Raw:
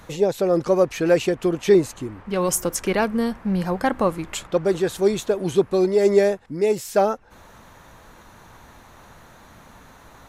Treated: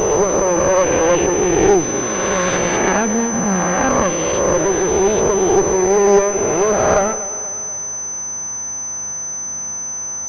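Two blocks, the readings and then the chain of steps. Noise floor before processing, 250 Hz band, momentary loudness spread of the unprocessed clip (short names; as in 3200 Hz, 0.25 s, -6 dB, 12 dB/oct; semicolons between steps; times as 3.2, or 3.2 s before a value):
-49 dBFS, +4.5 dB, 7 LU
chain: spectral swells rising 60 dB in 2.38 s; HPF 89 Hz; one-sided clip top -25 dBFS, bottom -5 dBFS; on a send: split-band echo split 310 Hz, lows 0.108 s, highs 0.241 s, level -14.5 dB; on the sum: pulse-width modulation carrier 6100 Hz; gain +4 dB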